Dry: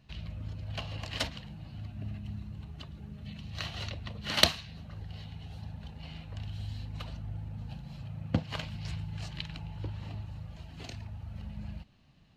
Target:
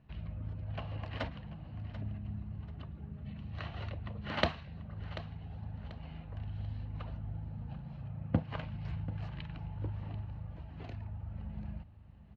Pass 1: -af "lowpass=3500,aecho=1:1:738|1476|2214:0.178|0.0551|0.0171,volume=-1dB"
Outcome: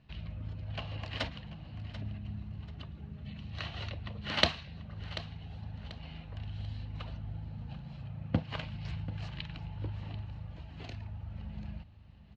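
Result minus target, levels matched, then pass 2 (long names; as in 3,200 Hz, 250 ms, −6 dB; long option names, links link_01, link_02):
4,000 Hz band +8.0 dB
-af "lowpass=1700,aecho=1:1:738|1476|2214:0.178|0.0551|0.0171,volume=-1dB"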